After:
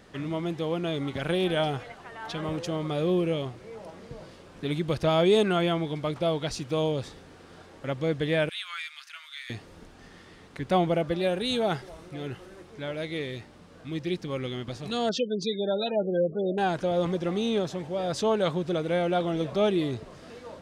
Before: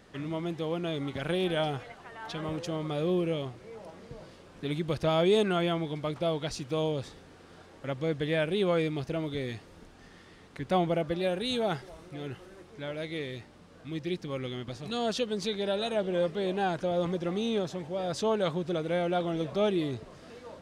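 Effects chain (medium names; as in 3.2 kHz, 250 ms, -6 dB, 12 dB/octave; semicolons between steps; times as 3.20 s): 8.49–9.50 s: steep high-pass 1.3 kHz 36 dB/octave; 15.09–16.58 s: spectral gate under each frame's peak -20 dB strong; trim +3 dB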